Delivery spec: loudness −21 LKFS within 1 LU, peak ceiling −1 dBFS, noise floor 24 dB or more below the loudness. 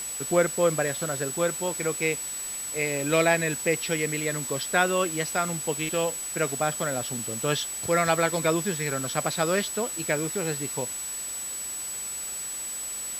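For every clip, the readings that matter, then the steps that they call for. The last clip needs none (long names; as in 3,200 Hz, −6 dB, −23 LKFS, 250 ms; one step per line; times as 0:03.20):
interfering tone 7,900 Hz; level of the tone −32 dBFS; background noise floor −34 dBFS; target noise floor −51 dBFS; integrated loudness −26.5 LKFS; sample peak −8.0 dBFS; target loudness −21.0 LKFS
→ notch filter 7,900 Hz, Q 30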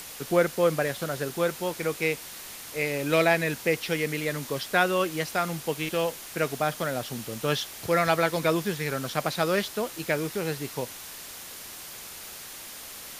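interfering tone none found; background noise floor −42 dBFS; target noise floor −52 dBFS
→ noise reduction from a noise print 10 dB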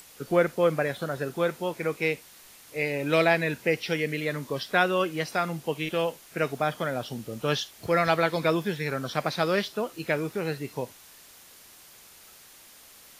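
background noise floor −52 dBFS; integrated loudness −27.5 LKFS; sample peak −8.5 dBFS; target loudness −21.0 LKFS
→ level +6.5 dB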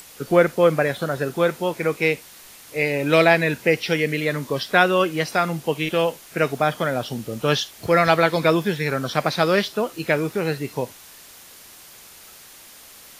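integrated loudness −21.0 LKFS; sample peak −2.0 dBFS; background noise floor −45 dBFS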